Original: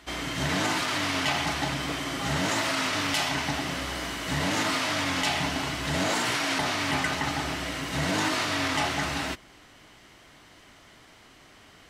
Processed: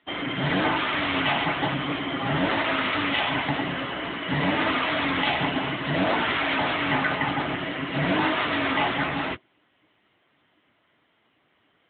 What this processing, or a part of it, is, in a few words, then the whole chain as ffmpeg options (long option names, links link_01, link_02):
mobile call with aggressive noise cancelling: -af "highpass=frequency=110:poles=1,afftdn=noise_reduction=16:noise_floor=-39,volume=6dB" -ar 8000 -c:a libopencore_amrnb -b:a 10200